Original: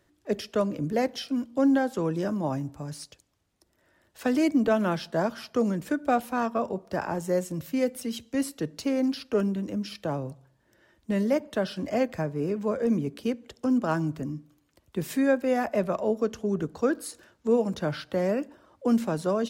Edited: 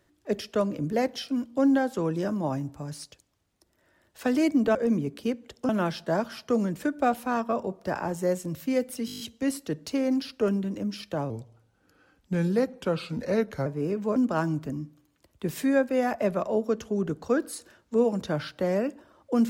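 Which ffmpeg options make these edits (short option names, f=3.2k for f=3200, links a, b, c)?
-filter_complex "[0:a]asplit=13[a][b][c][d][e][f][g][h][i][j][k][l][m];[a]atrim=end=4.752[n];[b]atrim=start=12.748:end=13.692[o];[c]atrim=start=4.748:end=8.142[p];[d]atrim=start=8.118:end=8.142[q];[e]atrim=start=8.118:end=8.142[r];[f]atrim=start=8.118:end=8.142[s];[g]atrim=start=8.118:end=8.142[t];[h]atrim=start=8.118:end=8.142[u];[i]atrim=start=8.118:end=8.142[v];[j]atrim=start=8.118:end=10.224[w];[k]atrim=start=10.22:end=12.25,asetpts=PTS-STARTPTS,asetrate=37926,aresample=44100[x];[l]atrim=start=12.246:end=12.752[y];[m]atrim=start=13.688[z];[n][o]acrossfade=d=0.004:c1=hsin:c2=hsin[aa];[aa][p]acrossfade=d=0.004:c1=hsin:c2=hsin[ab];[ab][q]acrossfade=d=0.004:c1=hsin:c2=hsin[ac];[ac][r]acrossfade=d=0.004:c1=hsin:c2=hsin[ad];[ad][s]acrossfade=d=0.004:c1=hsin:c2=hsin[ae];[ae][t]acrossfade=d=0.004:c1=hsin:c2=hsin[af];[af][u]acrossfade=d=0.004:c1=hsin:c2=hsin[ag];[ag][v]acrossfade=d=0.004:c1=hsin:c2=hsin[ah];[ah][w]acrossfade=d=0.004:c1=hsin:c2=hsin[ai];[ai][x]acrossfade=d=0.004:c1=hsin:c2=hsin[aj];[aj][y]acrossfade=d=0.004:c1=hsin:c2=hsin[ak];[ak][z]acrossfade=d=0.004:c1=hsin:c2=hsin"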